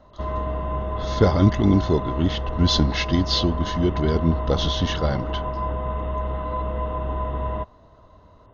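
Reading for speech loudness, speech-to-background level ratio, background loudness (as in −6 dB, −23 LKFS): −22.0 LKFS, 6.5 dB, −28.5 LKFS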